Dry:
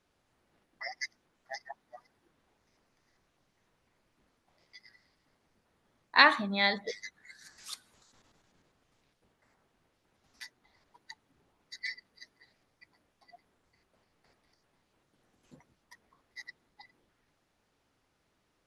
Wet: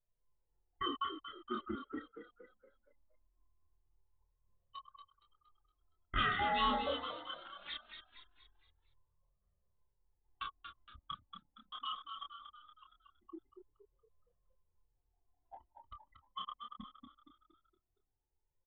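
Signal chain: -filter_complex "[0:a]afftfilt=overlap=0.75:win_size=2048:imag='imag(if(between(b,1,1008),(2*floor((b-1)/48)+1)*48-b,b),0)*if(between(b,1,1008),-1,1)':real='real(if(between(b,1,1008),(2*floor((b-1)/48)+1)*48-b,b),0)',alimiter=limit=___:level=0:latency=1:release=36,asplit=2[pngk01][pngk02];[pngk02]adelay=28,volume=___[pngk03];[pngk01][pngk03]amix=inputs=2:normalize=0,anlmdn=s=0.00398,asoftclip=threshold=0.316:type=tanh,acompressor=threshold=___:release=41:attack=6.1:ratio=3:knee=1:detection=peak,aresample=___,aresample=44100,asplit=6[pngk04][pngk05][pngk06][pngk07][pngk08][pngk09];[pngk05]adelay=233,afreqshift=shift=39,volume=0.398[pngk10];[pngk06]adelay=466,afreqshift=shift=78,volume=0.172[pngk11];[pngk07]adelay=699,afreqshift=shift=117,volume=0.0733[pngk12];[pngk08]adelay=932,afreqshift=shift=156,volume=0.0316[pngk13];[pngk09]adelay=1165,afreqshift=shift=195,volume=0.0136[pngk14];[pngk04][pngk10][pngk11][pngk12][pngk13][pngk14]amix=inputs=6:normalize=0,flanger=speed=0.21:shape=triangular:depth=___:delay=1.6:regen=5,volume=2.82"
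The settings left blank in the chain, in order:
0.376, 0.708, 0.00708, 8000, 2.5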